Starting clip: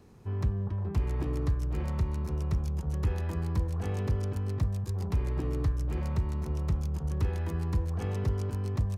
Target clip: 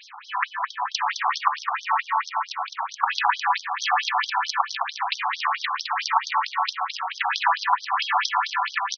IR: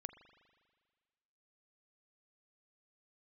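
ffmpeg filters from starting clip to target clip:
-filter_complex "[0:a]asettb=1/sr,asplit=3[link_01][link_02][link_03];[link_01]atrim=end=1.494[link_04];[link_02]atrim=start=1.49:end=3.06,asetpts=PTS-STARTPTS,afade=type=in:duration=0.004:curve=qsin,afade=type=out:start_time=1.566:duration=0.004:curve=qsin,highshelf=frequency=2900:gain=-11[link_05];[link_03]atrim=start=3.056[link_06];[link_04][link_05]acrossfade=duration=0.004:curve1=hsin:curve2=qsin[link_07];[link_07][link_06]acrossfade=duration=0.004:curve1=qsin:curve2=hsin,aecho=1:1:212|424|636|848:0.501|0.16|0.0513|0.0164,alimiter=level_in=21.5dB:limit=-1dB:release=50:level=0:latency=1,afftfilt=real='re*between(b*sr/1024,960*pow(4600/960,0.5+0.5*sin(2*PI*4.5*pts/sr))/1.41,960*pow(4600/960,0.5+0.5*sin(2*PI*4.5*pts/sr))*1.41)':imag='im*between(b*sr/1024,960*pow(4600/960,0.5+0.5*sin(2*PI*4.5*pts/sr))/1.41,960*pow(4600/960,0.5+0.5*sin(2*PI*4.5*pts/sr))*1.41)':win_size=1024:overlap=0.75,volume=8.5dB"

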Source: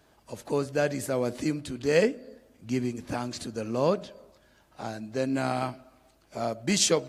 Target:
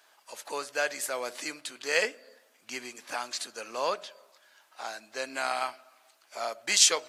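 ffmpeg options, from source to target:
ffmpeg -i in.wav -af "highpass=1000,volume=4.5dB" out.wav

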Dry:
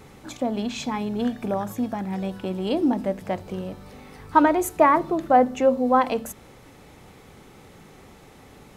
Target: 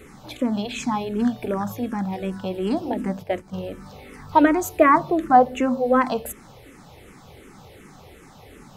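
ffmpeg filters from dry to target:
ffmpeg -i in.wav -filter_complex "[0:a]asplit=3[link_01][link_02][link_03];[link_01]afade=type=out:start_time=3.22:duration=0.02[link_04];[link_02]agate=range=-9dB:threshold=-30dB:ratio=16:detection=peak,afade=type=in:start_time=3.22:duration=0.02,afade=type=out:start_time=3.62:duration=0.02[link_05];[link_03]afade=type=in:start_time=3.62:duration=0.02[link_06];[link_04][link_05][link_06]amix=inputs=3:normalize=0,asplit=2[link_07][link_08];[link_08]afreqshift=-2.7[link_09];[link_07][link_09]amix=inputs=2:normalize=1,volume=5dB" out.wav

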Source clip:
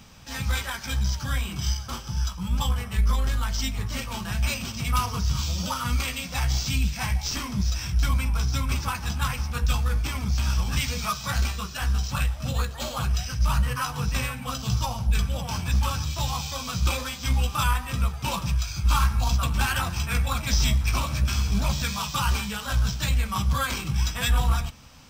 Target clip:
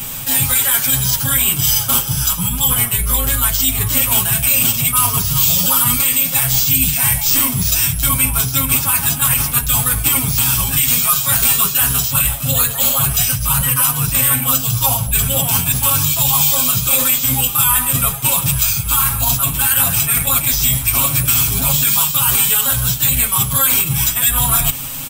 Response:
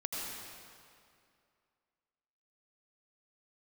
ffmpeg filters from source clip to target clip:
-af "equalizer=frequency=3300:width_type=o:width=0.89:gain=6,aecho=1:1:7.3:0.98,areverse,acompressor=threshold=-30dB:ratio=10,areverse,aexciter=amount=12.6:drive=5.2:freq=7900,alimiter=level_in=15dB:limit=-1dB:release=50:level=0:latency=1,volume=-1dB"

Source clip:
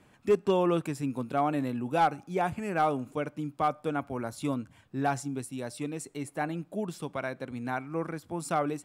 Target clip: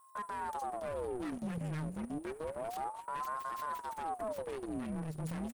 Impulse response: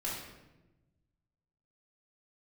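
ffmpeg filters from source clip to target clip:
-filter_complex "[0:a]agate=range=-20dB:threshold=-56dB:ratio=16:detection=peak,bass=frequency=250:gain=13,treble=frequency=4000:gain=5,bandreject=frequency=1300:width=12,acompressor=threshold=-35dB:ratio=16,alimiter=level_in=13dB:limit=-24dB:level=0:latency=1:release=88,volume=-13dB,aeval=exprs='val(0)+0.000562*sin(2*PI*9400*n/s)':channel_layout=same,aecho=1:1:1191:0.0891,aeval=exprs='abs(val(0))':channel_layout=same,atempo=1.6,asplit=2[link_01][link_02];[1:a]atrim=start_sample=2205[link_03];[link_02][link_03]afir=irnorm=-1:irlink=0,volume=-26dB[link_04];[link_01][link_04]amix=inputs=2:normalize=0,aeval=exprs='val(0)*sin(2*PI*610*n/s+610*0.75/0.29*sin(2*PI*0.29*n/s))':channel_layout=same,volume=6.5dB"

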